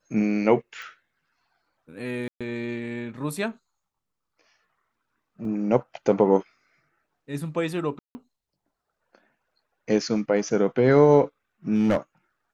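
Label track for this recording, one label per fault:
0.820000	0.820000	pop
2.280000	2.410000	gap 0.126 s
5.450000	5.450000	gap 2.4 ms
7.990000	8.150000	gap 0.16 s
11.740000	11.970000	clipped -16 dBFS

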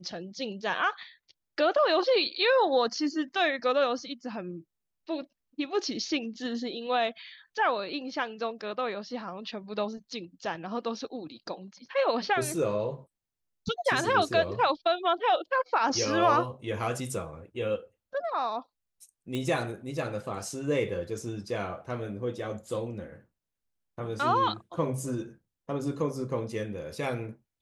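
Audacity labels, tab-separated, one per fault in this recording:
19.350000	19.350000	pop -20 dBFS

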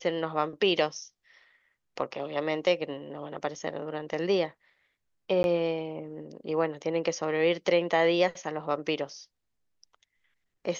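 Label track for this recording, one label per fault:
5.430000	5.440000	gap 11 ms

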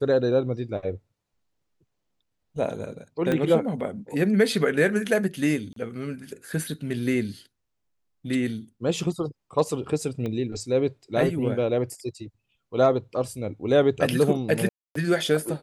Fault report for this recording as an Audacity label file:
3.320000	3.320000	pop -13 dBFS
5.730000	5.760000	gap 33 ms
10.260000	10.260000	pop -20 dBFS
14.690000	14.950000	gap 0.264 s

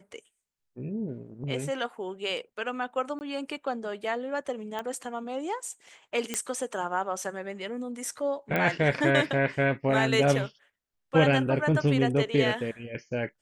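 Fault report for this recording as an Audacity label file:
3.190000	3.210000	gap 19 ms
4.790000	4.790000	pop -20 dBFS
6.340000	6.340000	pop -13 dBFS
8.560000	8.560000	pop -14 dBFS

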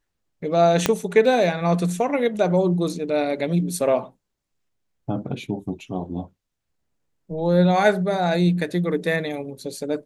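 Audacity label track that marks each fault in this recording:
0.860000	0.860000	pop -3 dBFS

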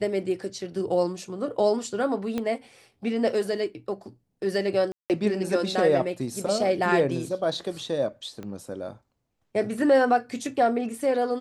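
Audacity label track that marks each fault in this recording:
2.380000	2.380000	pop -16 dBFS
4.920000	5.100000	gap 0.178 s
8.430000	8.430000	pop -25 dBFS

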